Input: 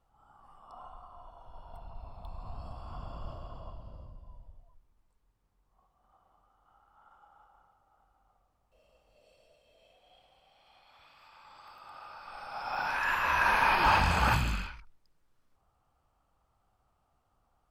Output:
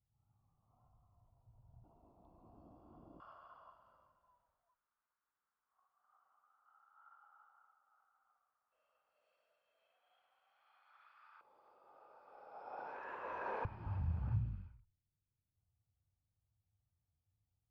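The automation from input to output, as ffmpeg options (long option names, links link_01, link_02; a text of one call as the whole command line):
ffmpeg -i in.wav -af "asetnsamples=nb_out_samples=441:pad=0,asendcmd='1.84 bandpass f 320;3.2 bandpass f 1400;11.41 bandpass f 450;13.65 bandpass f 100',bandpass=frequency=110:width_type=q:width=3.6:csg=0" out.wav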